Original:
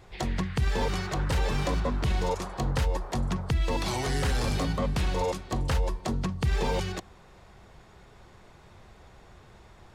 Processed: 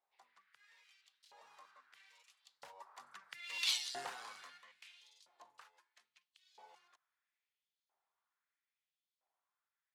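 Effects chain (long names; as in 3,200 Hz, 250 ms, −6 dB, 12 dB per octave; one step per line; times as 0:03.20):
source passing by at 0:03.70, 17 m/s, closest 1.2 metres
dynamic equaliser 170 Hz, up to +7 dB, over −53 dBFS, Q 0.74
auto-filter high-pass saw up 0.76 Hz 700–4,300 Hz
level −1 dB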